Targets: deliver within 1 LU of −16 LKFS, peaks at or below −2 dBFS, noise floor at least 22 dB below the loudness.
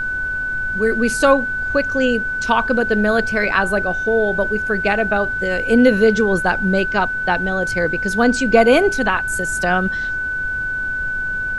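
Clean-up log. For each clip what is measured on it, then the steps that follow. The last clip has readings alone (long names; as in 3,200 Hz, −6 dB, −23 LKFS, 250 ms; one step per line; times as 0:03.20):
interfering tone 1,500 Hz; level of the tone −20 dBFS; background noise floor −23 dBFS; target noise floor −40 dBFS; integrated loudness −17.5 LKFS; sample peak −1.0 dBFS; target loudness −16.0 LKFS
→ notch filter 1,500 Hz, Q 30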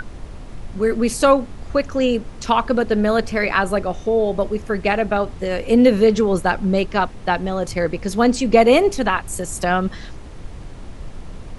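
interfering tone none found; background noise floor −36 dBFS; target noise floor −41 dBFS
→ noise reduction from a noise print 6 dB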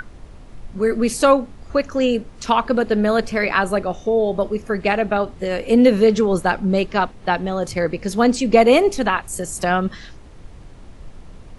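background noise floor −41 dBFS; integrated loudness −19.0 LKFS; sample peak −1.5 dBFS; target loudness −16.0 LKFS
→ level +3 dB
brickwall limiter −2 dBFS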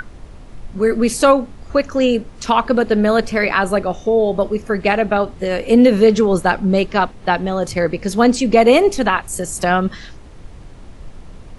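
integrated loudness −16.0 LKFS; sample peak −2.0 dBFS; background noise floor −38 dBFS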